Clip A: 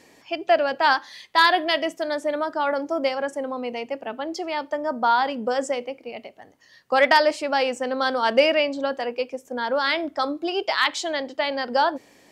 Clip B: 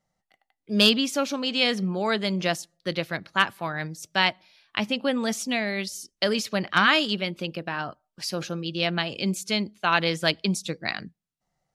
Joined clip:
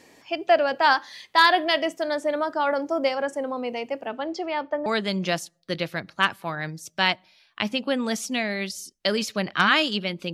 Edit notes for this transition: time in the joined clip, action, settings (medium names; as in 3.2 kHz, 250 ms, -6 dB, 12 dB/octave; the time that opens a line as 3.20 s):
clip A
4.08–4.86 s: low-pass 8.9 kHz -> 1.7 kHz
4.86 s: go over to clip B from 2.03 s